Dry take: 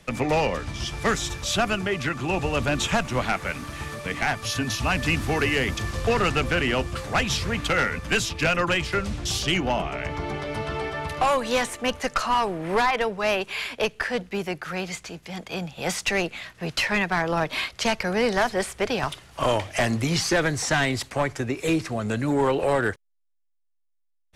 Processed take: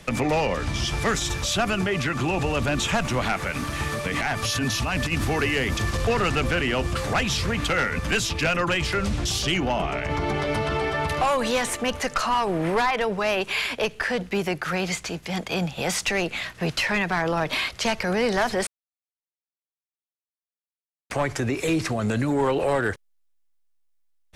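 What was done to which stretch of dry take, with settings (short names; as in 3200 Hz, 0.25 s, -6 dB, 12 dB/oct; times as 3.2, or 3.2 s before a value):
4.12–5.13 negative-ratio compressor -26 dBFS, ratio -0.5
18.67–21.1 mute
whole clip: limiter -23 dBFS; gain +6.5 dB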